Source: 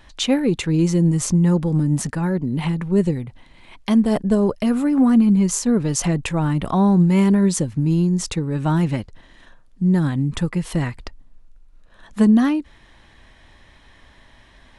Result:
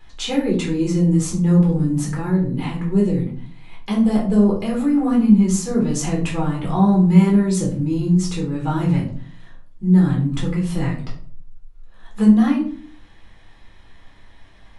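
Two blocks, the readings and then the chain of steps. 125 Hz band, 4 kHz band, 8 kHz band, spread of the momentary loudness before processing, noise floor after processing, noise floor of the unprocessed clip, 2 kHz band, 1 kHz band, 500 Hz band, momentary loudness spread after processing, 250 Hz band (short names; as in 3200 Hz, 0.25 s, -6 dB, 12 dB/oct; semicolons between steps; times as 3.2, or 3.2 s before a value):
+0.5 dB, -2.5 dB, -3.0 dB, 9 LU, -46 dBFS, -51 dBFS, -2.0 dB, 0.0 dB, -0.5 dB, 10 LU, +1.0 dB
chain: shoebox room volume 380 m³, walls furnished, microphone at 4 m; gain -8 dB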